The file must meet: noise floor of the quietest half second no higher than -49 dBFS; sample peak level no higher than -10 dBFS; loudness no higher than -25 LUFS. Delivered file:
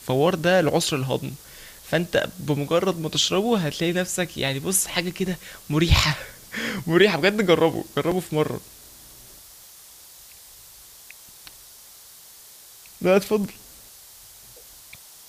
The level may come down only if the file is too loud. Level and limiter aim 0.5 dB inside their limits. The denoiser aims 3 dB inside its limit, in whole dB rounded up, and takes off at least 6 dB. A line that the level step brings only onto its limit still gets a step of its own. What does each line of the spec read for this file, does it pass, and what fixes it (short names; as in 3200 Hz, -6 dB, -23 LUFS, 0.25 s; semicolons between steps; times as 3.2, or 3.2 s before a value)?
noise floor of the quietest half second -47 dBFS: fail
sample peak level -5.0 dBFS: fail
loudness -22.5 LUFS: fail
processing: gain -3 dB; limiter -10.5 dBFS